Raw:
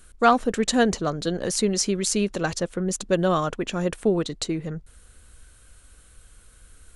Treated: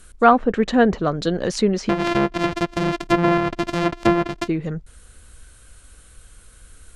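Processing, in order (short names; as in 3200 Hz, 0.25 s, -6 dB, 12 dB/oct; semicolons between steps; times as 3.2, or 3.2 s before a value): 1.89–4.48 sample sorter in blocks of 128 samples; treble ducked by the level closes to 2000 Hz, closed at -18.5 dBFS; gain +4.5 dB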